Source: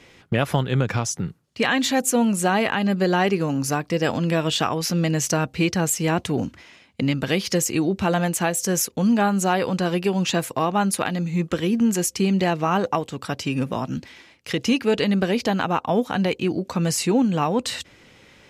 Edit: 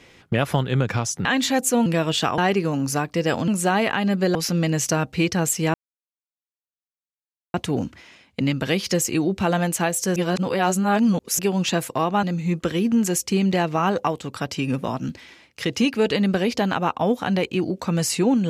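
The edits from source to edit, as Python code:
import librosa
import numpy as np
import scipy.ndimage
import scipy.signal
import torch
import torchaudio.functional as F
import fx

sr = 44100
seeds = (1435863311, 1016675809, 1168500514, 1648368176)

y = fx.edit(x, sr, fx.cut(start_s=1.25, length_s=0.41),
    fx.swap(start_s=2.27, length_s=0.87, other_s=4.24, other_length_s=0.52),
    fx.insert_silence(at_s=6.15, length_s=1.8),
    fx.reverse_span(start_s=8.77, length_s=1.23),
    fx.cut(start_s=10.84, length_s=0.27), tone=tone)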